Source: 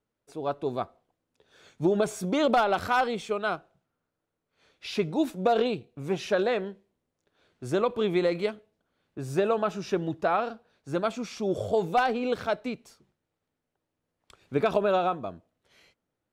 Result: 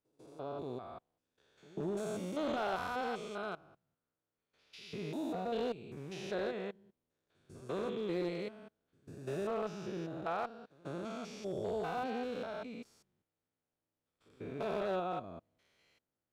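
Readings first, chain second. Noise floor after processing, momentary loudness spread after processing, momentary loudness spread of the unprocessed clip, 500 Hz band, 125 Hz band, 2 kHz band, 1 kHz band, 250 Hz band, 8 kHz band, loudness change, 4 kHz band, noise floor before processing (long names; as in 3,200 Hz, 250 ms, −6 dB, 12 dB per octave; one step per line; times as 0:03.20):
below −85 dBFS, 15 LU, 12 LU, −11.5 dB, −10.0 dB, −12.0 dB, −12.5 dB, −10.5 dB, −11.0 dB, −11.5 dB, −11.5 dB, −84 dBFS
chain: spectrum averaged block by block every 200 ms
echo ahead of the sound 146 ms −22 dB
asymmetric clip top −24.5 dBFS
level −7 dB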